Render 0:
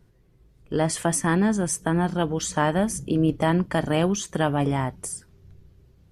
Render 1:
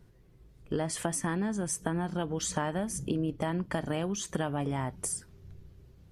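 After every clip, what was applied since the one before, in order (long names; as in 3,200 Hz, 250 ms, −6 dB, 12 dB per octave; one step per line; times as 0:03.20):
downward compressor, threshold −28 dBFS, peak gain reduction 11.5 dB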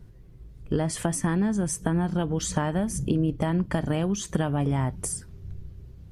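low-shelf EQ 200 Hz +10 dB
level +2.5 dB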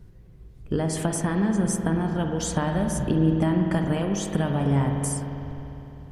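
convolution reverb RT60 3.3 s, pre-delay 50 ms, DRR 2.5 dB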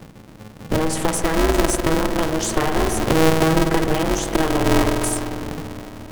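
ring modulator with a square carrier 160 Hz
level +5.5 dB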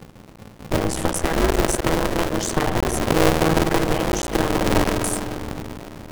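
sub-harmonics by changed cycles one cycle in 3, muted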